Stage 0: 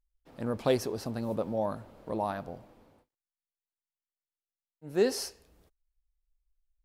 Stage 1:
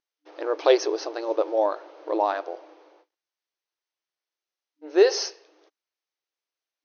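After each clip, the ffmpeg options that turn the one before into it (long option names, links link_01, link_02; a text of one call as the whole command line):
ffmpeg -i in.wav -af "afftfilt=real='re*between(b*sr/4096,300,6500)':imag='im*between(b*sr/4096,300,6500)':win_size=4096:overlap=0.75,volume=9dB" out.wav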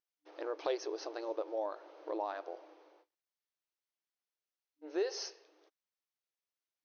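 ffmpeg -i in.wav -af "acompressor=threshold=-30dB:ratio=2,volume=-8dB" out.wav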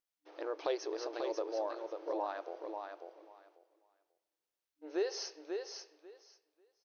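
ffmpeg -i in.wav -af "aecho=1:1:541|1082|1623:0.531|0.0849|0.0136" out.wav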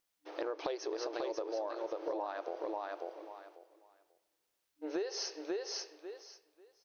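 ffmpeg -i in.wav -af "acompressor=threshold=-43dB:ratio=6,volume=8.5dB" out.wav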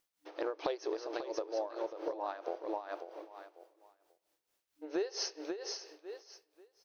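ffmpeg -i in.wav -af "tremolo=f=4.4:d=0.72,volume=3dB" out.wav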